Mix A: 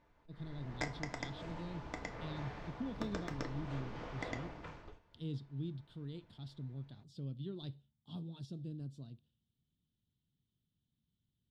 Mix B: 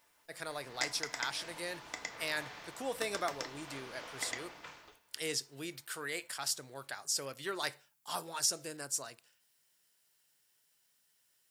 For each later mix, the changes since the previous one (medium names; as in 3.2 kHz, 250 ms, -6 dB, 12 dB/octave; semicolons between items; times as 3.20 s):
speech: remove FFT filter 230 Hz 0 dB, 510 Hz -20 dB, 2.1 kHz -30 dB, 3.5 kHz -1 dB, 6 kHz -27 dB; master: add tilt EQ +4.5 dB/octave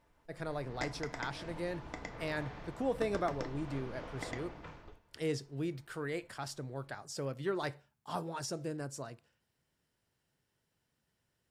master: add tilt EQ -4.5 dB/octave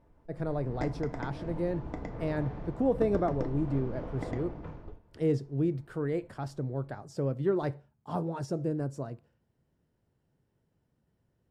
master: add tilt shelf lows +10 dB, about 1.1 kHz